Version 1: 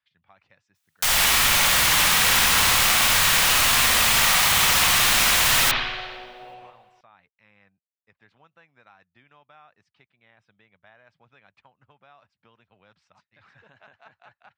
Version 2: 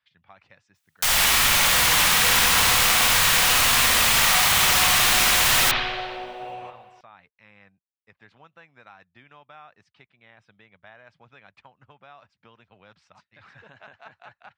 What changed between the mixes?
speech +5.5 dB; second sound +7.5 dB

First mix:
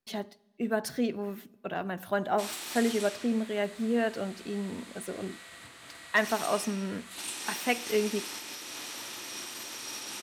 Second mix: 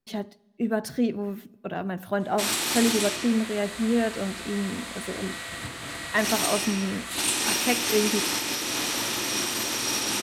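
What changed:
background +12.0 dB; master: add low shelf 340 Hz +8 dB

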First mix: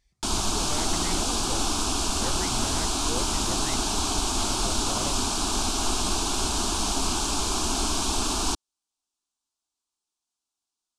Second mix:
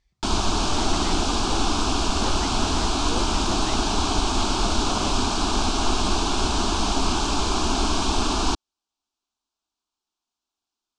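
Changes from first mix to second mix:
background +5.5 dB; master: add air absorption 110 m

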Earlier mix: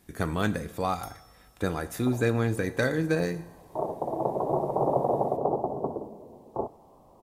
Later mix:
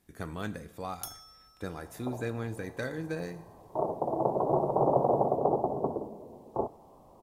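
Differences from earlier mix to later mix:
speech -9.5 dB; first sound +8.0 dB

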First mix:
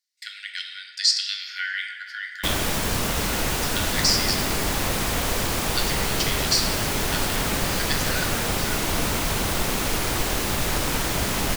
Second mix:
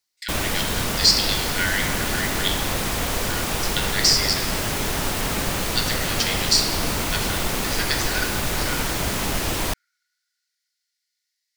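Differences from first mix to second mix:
speech +3.5 dB; background: entry -2.15 s

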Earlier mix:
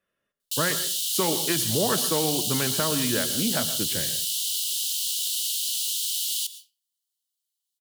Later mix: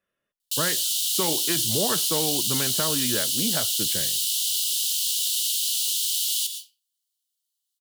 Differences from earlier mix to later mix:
speech: send off; background: send +9.0 dB

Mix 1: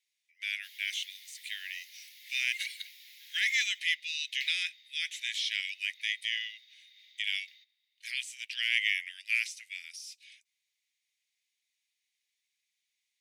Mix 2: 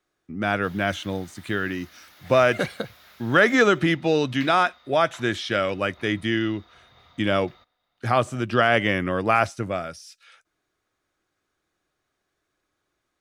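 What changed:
background: send -9.0 dB; master: remove steep high-pass 2000 Hz 72 dB/oct

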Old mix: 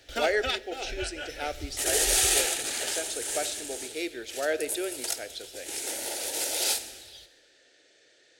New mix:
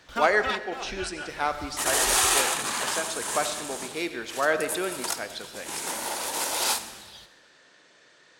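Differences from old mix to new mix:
speech: send +9.0 dB; first sound -5.5 dB; master: remove fixed phaser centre 440 Hz, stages 4

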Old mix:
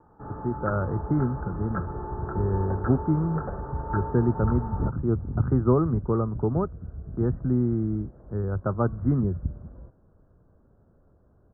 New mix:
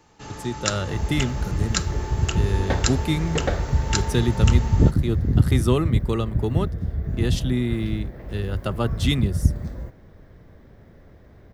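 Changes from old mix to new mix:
second sound +11.5 dB; master: remove steep low-pass 1500 Hz 72 dB/oct

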